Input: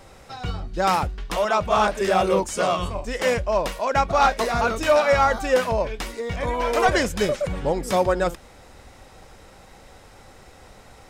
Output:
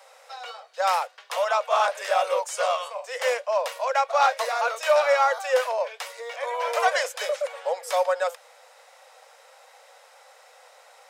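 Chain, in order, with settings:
Butterworth high-pass 480 Hz 96 dB per octave
level −2 dB

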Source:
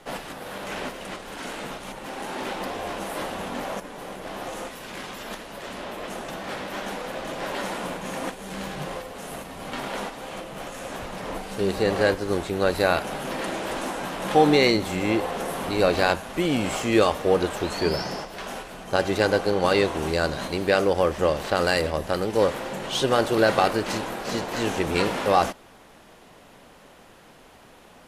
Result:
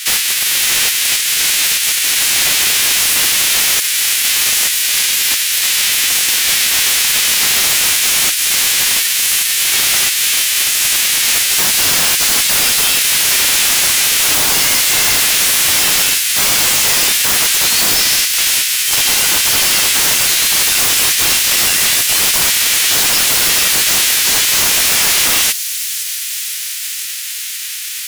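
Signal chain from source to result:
spectral envelope flattened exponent 0.3
inverse Chebyshev high-pass filter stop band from 440 Hz, stop band 70 dB
in parallel at 0 dB: downward compressor, threshold −36 dBFS, peak gain reduction 19 dB
on the sum: brickwall limiter −11.5 dBFS, peak gain reduction 9.5 dB
sine wavefolder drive 17 dB, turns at −9 dBFS
on a send: delay with a high-pass on its return 510 ms, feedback 78%, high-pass 5,000 Hz, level −10.5 dB

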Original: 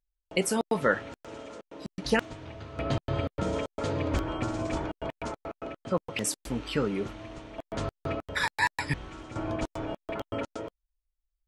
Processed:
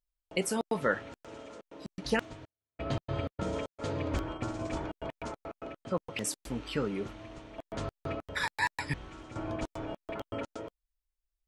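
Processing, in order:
0:02.45–0:04.72: noise gate −32 dBFS, range −53 dB
level −4 dB

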